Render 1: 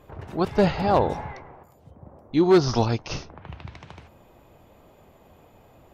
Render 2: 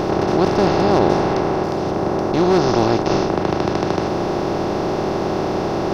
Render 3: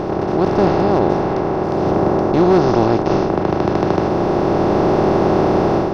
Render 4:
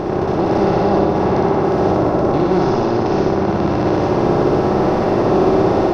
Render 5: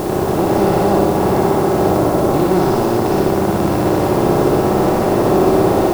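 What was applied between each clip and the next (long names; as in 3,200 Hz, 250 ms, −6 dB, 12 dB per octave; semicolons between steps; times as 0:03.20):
compressor on every frequency bin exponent 0.2; level −3 dB
high-shelf EQ 2,700 Hz −11 dB; automatic gain control; level −1 dB
brickwall limiter −9.5 dBFS, peak gain reduction 7.5 dB; on a send: flutter between parallel walls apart 10.3 metres, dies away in 1.2 s
bit-depth reduction 6 bits, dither triangular; level +1 dB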